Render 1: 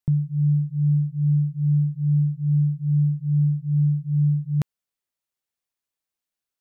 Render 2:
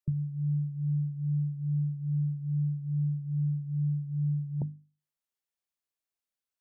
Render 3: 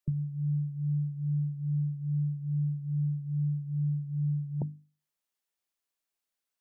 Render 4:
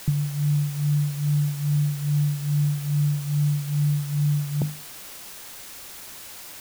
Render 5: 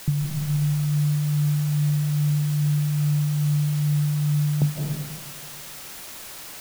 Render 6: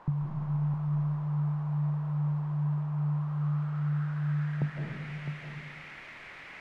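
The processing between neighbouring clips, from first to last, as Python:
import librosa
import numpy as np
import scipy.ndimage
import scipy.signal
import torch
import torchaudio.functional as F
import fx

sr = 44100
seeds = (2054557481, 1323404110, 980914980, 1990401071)

y1 = fx.hum_notches(x, sr, base_hz=50, count=6)
y1 = fx.mod_noise(y1, sr, seeds[0], snr_db=26)
y1 = fx.spec_gate(y1, sr, threshold_db=-30, keep='strong')
y1 = y1 * 10.0 ** (-5.5 / 20.0)
y2 = fx.peak_eq(y1, sr, hz=72.0, db=-7.5, octaves=2.2)
y2 = y2 * 10.0 ** (3.5 / 20.0)
y3 = fx.quant_dither(y2, sr, seeds[1], bits=8, dither='triangular')
y3 = y3 * 10.0 ** (7.5 / 20.0)
y4 = fx.rev_freeverb(y3, sr, rt60_s=1.5, hf_ratio=0.6, predelay_ms=120, drr_db=0.0)
y5 = fx.filter_sweep_lowpass(y4, sr, from_hz=1000.0, to_hz=2100.0, start_s=3.03, end_s=5.08, q=3.7)
y5 = y5 + 10.0 ** (-9.5 / 20.0) * np.pad(y5, (int(658 * sr / 1000.0), 0))[:len(y5)]
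y5 = y5 * 10.0 ** (-7.0 / 20.0)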